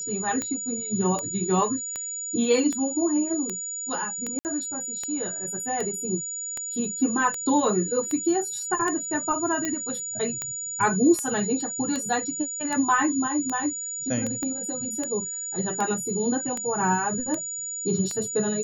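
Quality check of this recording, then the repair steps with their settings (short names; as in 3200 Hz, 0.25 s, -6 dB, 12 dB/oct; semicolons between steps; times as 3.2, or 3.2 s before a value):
tick 78 rpm -15 dBFS
tone 6900 Hz -30 dBFS
4.39–4.45 gap 59 ms
9.65 pop
14.43 pop -17 dBFS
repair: de-click; notch 6900 Hz, Q 30; interpolate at 4.39, 59 ms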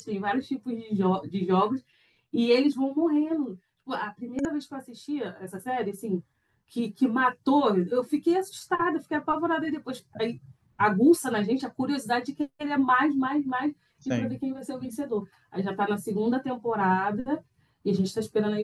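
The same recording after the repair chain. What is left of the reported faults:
9.65 pop
14.43 pop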